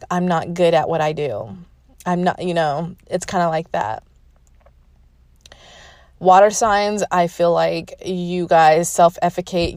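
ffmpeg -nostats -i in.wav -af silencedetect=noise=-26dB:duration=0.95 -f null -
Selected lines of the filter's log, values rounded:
silence_start: 3.98
silence_end: 5.46 | silence_duration: 1.48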